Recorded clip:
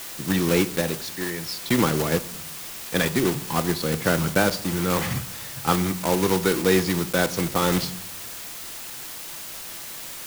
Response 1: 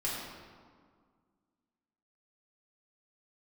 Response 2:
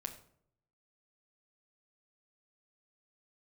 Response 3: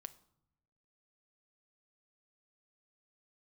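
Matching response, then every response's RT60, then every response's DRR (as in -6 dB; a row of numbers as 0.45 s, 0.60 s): 3; 1.9 s, 0.65 s, no single decay rate; -7.0 dB, 3.0 dB, 11.5 dB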